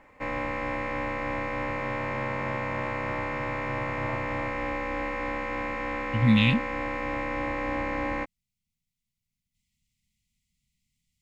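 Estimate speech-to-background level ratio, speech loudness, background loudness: 8.0 dB, -23.0 LUFS, -31.0 LUFS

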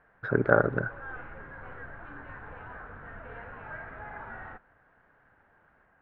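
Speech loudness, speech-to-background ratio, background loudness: -26.5 LUFS, 17.5 dB, -44.0 LUFS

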